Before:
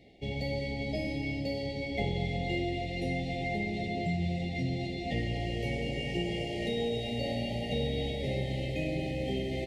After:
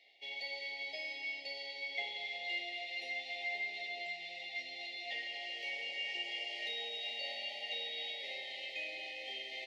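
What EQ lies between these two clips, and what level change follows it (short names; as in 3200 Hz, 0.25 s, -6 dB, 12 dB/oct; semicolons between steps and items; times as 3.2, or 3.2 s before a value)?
HPF 710 Hz 12 dB/oct; air absorption 260 m; differentiator; +13.5 dB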